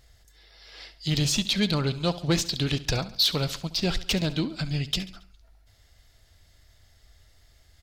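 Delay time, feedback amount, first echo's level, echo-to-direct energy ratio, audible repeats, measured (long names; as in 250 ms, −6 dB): 69 ms, 50%, −16.5 dB, −15.0 dB, 4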